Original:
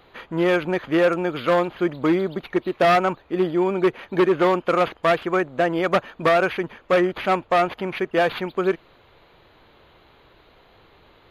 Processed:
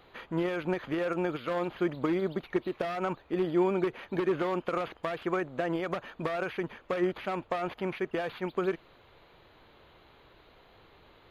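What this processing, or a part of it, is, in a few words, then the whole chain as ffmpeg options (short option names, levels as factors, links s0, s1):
de-esser from a sidechain: -filter_complex "[0:a]asplit=2[s0][s1];[s1]highpass=f=4700:w=0.5412,highpass=f=4700:w=1.3066,apad=whole_len=498490[s2];[s0][s2]sidechaincompress=threshold=0.00141:ratio=3:attack=4.9:release=46,volume=0.596"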